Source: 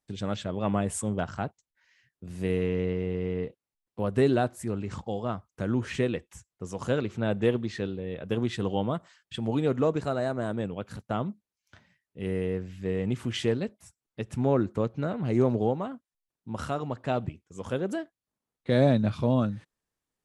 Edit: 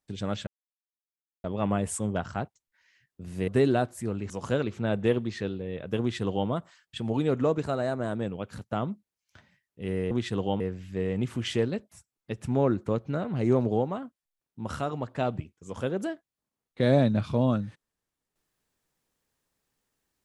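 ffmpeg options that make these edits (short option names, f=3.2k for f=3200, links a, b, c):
-filter_complex "[0:a]asplit=6[a][b][c][d][e][f];[a]atrim=end=0.47,asetpts=PTS-STARTPTS,afade=t=out:st=0.466:d=0.004:c=hsin,apad=pad_dur=0.97[g];[b]atrim=start=0.47:end=2.512,asetpts=PTS-STARTPTS,afade=t=in:d=0.004:c=hsin[h];[c]atrim=start=4.098:end=4.922[i];[d]atrim=start=6.678:end=12.492[j];[e]atrim=start=8.378:end=8.872[k];[f]atrim=start=12.488[l];[g][h]concat=n=2:v=0:a=1[m];[m][i]acrossfade=d=0.004:c1=hsin:c2=hsin[n];[n][j]acrossfade=d=0.004:c1=hsin:c2=hsin[o];[o][k]acrossfade=d=0.004:c1=hsin:c2=hsin[p];[p][l]acrossfade=d=0.004:c1=hsin:c2=hsin"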